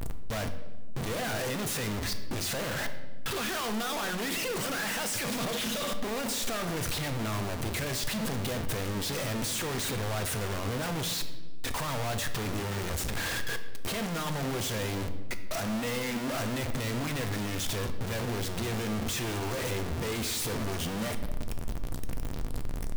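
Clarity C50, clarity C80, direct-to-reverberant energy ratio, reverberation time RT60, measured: 10.5 dB, 12.5 dB, 7.5 dB, 1.3 s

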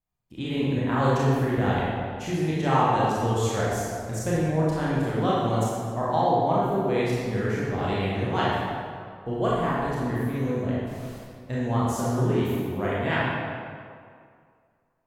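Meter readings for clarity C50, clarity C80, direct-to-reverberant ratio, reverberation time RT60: −3.5 dB, −1.0 dB, −8.0 dB, 2.2 s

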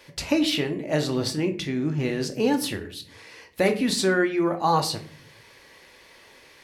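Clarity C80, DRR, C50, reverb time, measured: 17.0 dB, 5.0 dB, 13.0 dB, 0.50 s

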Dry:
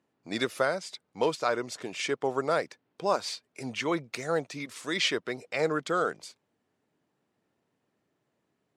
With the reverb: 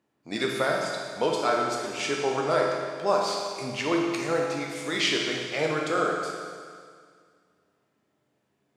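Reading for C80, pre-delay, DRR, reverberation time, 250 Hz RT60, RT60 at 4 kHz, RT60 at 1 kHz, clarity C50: 3.0 dB, 10 ms, −1.5 dB, 2.0 s, 2.0 s, 2.0 s, 2.0 s, 1.0 dB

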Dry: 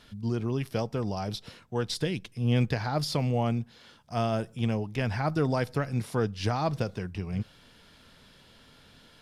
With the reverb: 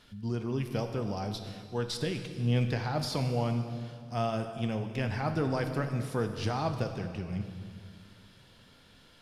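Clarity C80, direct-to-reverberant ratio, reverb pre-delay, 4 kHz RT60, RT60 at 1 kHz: 9.0 dB, 6.0 dB, 3 ms, 1.9 s, 1.9 s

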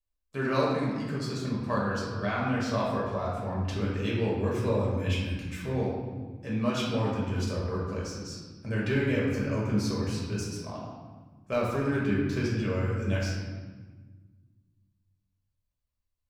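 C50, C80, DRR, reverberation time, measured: 0.5 dB, 2.5 dB, −6.0 dB, 1.4 s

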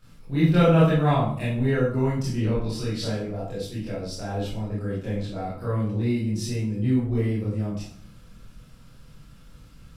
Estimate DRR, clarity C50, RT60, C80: −10.5 dB, 1.0 dB, 0.55 s, 6.5 dB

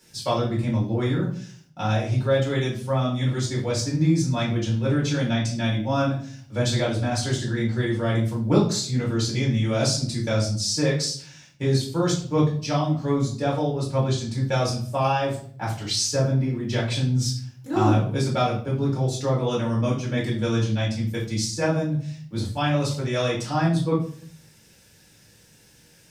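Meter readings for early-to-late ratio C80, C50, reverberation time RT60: 11.5 dB, 7.0 dB, 0.55 s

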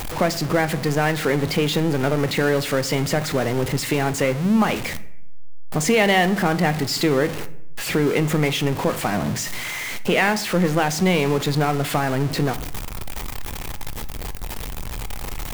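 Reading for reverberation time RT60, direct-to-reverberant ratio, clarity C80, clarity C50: 0.75 s, 11.5 dB, 19.5 dB, 16.5 dB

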